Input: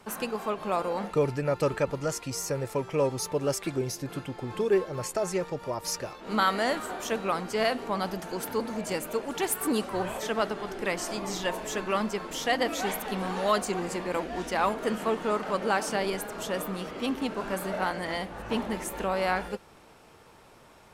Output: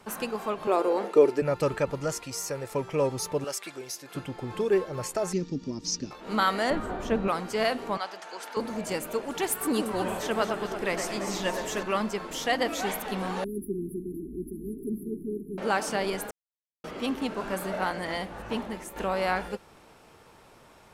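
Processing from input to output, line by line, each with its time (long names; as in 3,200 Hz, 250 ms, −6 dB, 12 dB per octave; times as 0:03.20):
0:00.67–0:01.42: high-pass with resonance 360 Hz, resonance Q 3.3
0:02.25–0:02.72: low-shelf EQ 380 Hz −7 dB
0:03.44–0:04.15: high-pass filter 1,200 Hz 6 dB per octave
0:05.33–0:06.11: drawn EQ curve 120 Hz 0 dB, 270 Hz +13 dB, 590 Hz −18 dB, 1,600 Hz −14 dB, 6,000 Hz +5 dB, 11,000 Hz −25 dB
0:06.70–0:07.28: RIAA equalisation playback
0:07.97–0:08.57: band-pass filter 720–6,700 Hz
0:09.63–0:11.83: delay that swaps between a low-pass and a high-pass 113 ms, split 2,100 Hz, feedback 73%, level −6 dB
0:13.44–0:15.58: linear-phase brick-wall band-stop 430–9,700 Hz
0:16.31–0:16.84: silence
0:18.33–0:18.96: fade out, to −8 dB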